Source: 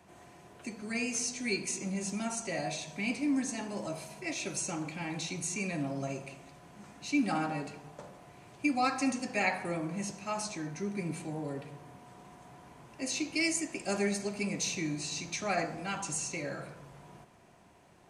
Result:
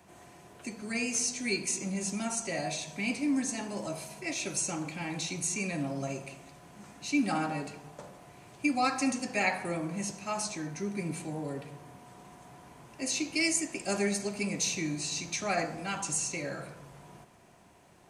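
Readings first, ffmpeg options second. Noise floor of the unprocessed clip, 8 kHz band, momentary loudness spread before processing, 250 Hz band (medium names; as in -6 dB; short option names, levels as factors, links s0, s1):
-59 dBFS, +4.0 dB, 21 LU, +1.0 dB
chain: -af "highshelf=f=6700:g=5.5,volume=1.12"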